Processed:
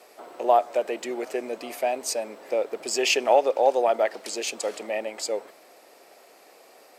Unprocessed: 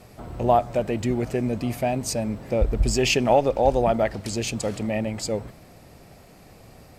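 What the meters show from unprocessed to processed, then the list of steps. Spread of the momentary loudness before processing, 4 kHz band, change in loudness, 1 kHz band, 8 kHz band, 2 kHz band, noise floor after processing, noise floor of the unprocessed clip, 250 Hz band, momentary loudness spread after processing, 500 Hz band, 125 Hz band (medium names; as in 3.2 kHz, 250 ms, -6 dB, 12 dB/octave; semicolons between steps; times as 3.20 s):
9 LU, 0.0 dB, -1.5 dB, 0.0 dB, 0.0 dB, 0.0 dB, -54 dBFS, -50 dBFS, -11.0 dB, 11 LU, -0.5 dB, under -30 dB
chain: high-pass 380 Hz 24 dB/octave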